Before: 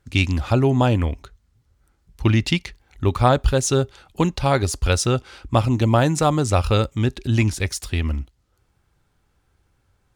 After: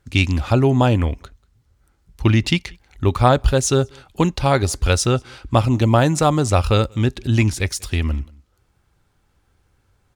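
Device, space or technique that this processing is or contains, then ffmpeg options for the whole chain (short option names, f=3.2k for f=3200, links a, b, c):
ducked delay: -filter_complex "[0:a]asplit=3[a][b][c];[b]adelay=188,volume=-8dB[d];[c]apad=whole_len=456285[e];[d][e]sidechaincompress=threshold=-37dB:ratio=10:attack=7.8:release=1060[f];[a][f]amix=inputs=2:normalize=0,volume=2dB"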